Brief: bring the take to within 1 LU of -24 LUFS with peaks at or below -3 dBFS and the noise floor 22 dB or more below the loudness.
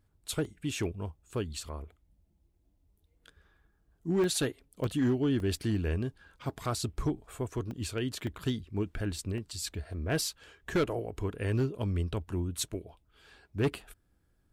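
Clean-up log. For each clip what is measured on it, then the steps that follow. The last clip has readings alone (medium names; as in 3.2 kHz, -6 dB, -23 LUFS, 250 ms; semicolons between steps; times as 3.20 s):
clipped samples 0.7%; clipping level -22.0 dBFS; dropouts 8; longest dropout 1.3 ms; loudness -33.5 LUFS; peak level -22.0 dBFS; loudness target -24.0 LUFS
-> clip repair -22 dBFS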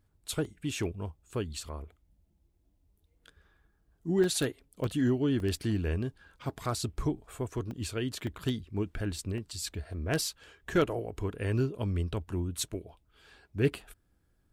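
clipped samples 0.0%; dropouts 8; longest dropout 1.3 ms
-> interpolate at 0.45/4.24/4.84/5.40/6.65/7.71/8.27/9.38 s, 1.3 ms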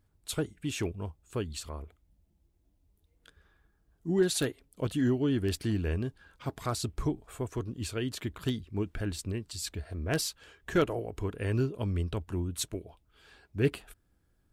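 dropouts 0; loudness -33.0 LUFS; peak level -13.0 dBFS; loudness target -24.0 LUFS
-> trim +9 dB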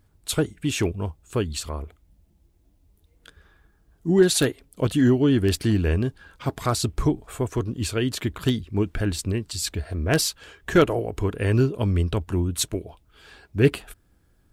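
loudness -24.0 LUFS; peak level -4.0 dBFS; noise floor -63 dBFS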